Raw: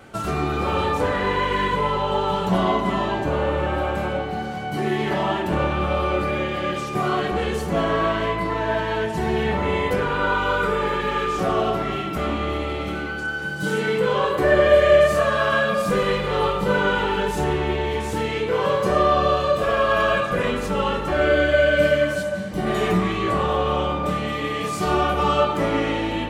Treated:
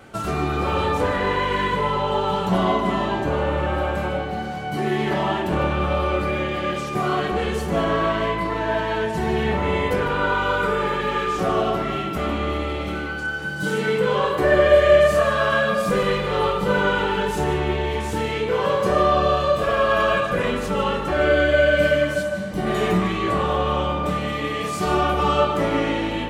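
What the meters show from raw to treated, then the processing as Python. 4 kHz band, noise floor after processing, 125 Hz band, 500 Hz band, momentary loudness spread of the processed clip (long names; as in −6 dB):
0.0 dB, −28 dBFS, +0.5 dB, +0.5 dB, 7 LU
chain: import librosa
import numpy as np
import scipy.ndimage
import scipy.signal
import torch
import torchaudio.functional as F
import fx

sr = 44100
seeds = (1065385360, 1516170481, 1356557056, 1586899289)

y = x + 10.0 ** (-13.5 / 20.0) * np.pad(x, (int(151 * sr / 1000.0), 0))[:len(x)]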